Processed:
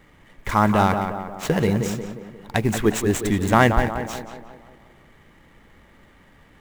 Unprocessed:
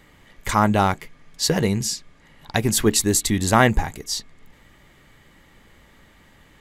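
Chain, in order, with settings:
running median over 9 samples
tape delay 179 ms, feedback 57%, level −5 dB, low-pass 1,900 Hz
noise that follows the level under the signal 34 dB

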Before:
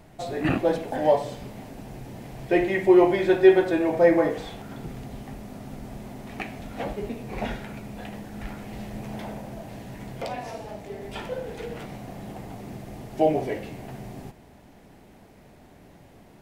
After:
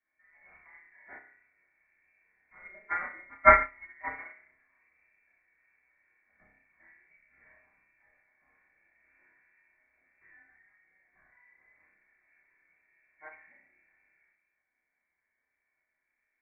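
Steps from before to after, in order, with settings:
harmonic generator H 3 −7 dB, 5 −37 dB, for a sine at −4 dBFS
high-pass filter 270 Hz 12 dB per octave
parametric band 410 Hz −13.5 dB 0.25 octaves
flutter between parallel walls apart 5.3 metres, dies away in 0.54 s
rectangular room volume 240 cubic metres, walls furnished, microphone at 3.4 metres
voice inversion scrambler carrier 2,500 Hz
expander for the loud parts 2.5 to 1, over −30 dBFS
level +1 dB

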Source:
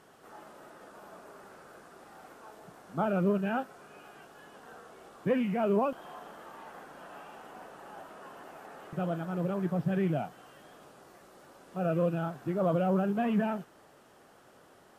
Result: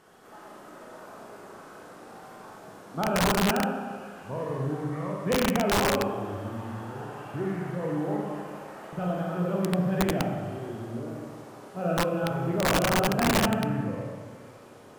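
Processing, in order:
delay with pitch and tempo change per echo 319 ms, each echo −5 semitones, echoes 2, each echo −6 dB
four-comb reverb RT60 1.7 s, combs from 30 ms, DRR −2.5 dB
wrap-around overflow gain 17 dB

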